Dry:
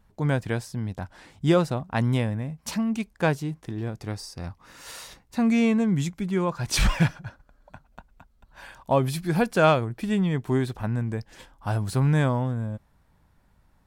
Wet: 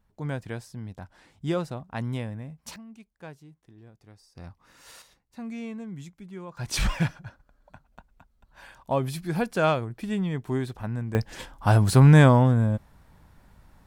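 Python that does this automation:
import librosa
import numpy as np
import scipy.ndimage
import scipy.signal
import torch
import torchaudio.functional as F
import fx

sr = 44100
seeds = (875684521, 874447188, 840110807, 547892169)

y = fx.gain(x, sr, db=fx.steps((0.0, -7.5), (2.76, -20.0), (4.35, -8.0), (5.02, -15.0), (6.57, -4.0), (11.15, 7.5)))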